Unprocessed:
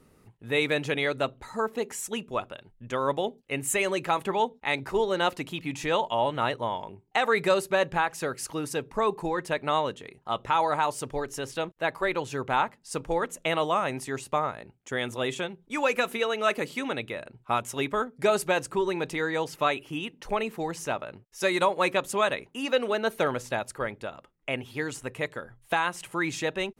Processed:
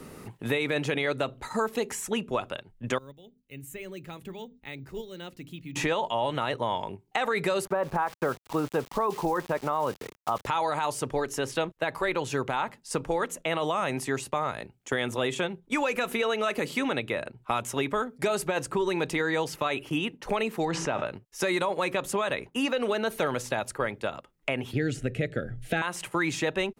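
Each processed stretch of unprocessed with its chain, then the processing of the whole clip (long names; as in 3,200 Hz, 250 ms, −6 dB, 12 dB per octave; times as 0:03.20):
0:02.98–0:05.76: guitar amp tone stack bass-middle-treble 10-0-1 + mains-hum notches 50/100/150/200/250/300 Hz + bad sample-rate conversion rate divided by 2×, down none, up hold
0:07.65–0:10.47: low-pass with resonance 1,100 Hz, resonance Q 1.6 + centre clipping without the shift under −45 dBFS
0:20.65–0:21.07: high-frequency loss of the air 110 metres + tuned comb filter 54 Hz, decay 0.48 s, mix 40% + envelope flattener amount 70%
0:24.73–0:25.82: Butterworth band-reject 1,000 Hz, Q 1.4 + upward compression, threshold −43 dBFS + RIAA equalisation playback
whole clip: noise gate −43 dBFS, range −8 dB; brickwall limiter −20.5 dBFS; multiband upward and downward compressor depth 70%; level +2.5 dB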